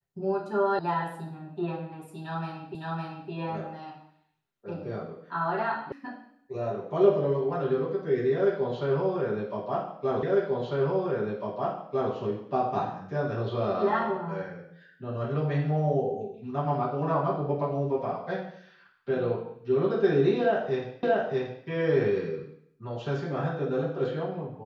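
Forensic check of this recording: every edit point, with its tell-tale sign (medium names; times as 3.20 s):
0.79 s: sound stops dead
2.75 s: repeat of the last 0.56 s
5.92 s: sound stops dead
10.23 s: repeat of the last 1.9 s
21.03 s: repeat of the last 0.63 s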